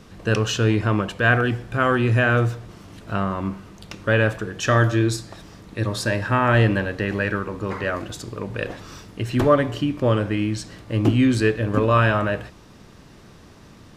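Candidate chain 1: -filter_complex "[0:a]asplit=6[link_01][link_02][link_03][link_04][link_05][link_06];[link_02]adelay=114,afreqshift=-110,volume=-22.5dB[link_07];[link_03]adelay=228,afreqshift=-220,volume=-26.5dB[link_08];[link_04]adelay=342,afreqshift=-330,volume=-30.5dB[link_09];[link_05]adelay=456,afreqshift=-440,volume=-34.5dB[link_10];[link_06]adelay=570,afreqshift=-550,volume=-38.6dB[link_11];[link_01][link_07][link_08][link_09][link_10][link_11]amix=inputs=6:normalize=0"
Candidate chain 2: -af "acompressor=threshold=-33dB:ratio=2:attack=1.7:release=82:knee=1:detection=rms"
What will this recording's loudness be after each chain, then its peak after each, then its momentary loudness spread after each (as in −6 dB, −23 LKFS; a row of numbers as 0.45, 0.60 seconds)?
−21.5, −31.5 LKFS; −4.5, −17.5 dBFS; 14, 13 LU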